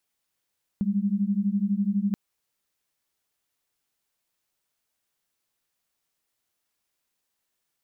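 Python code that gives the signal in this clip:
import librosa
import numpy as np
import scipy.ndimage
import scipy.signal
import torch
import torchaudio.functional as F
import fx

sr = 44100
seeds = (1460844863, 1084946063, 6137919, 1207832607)

y = fx.two_tone_beats(sr, length_s=1.33, hz=195.0, beat_hz=12.0, level_db=-25.0)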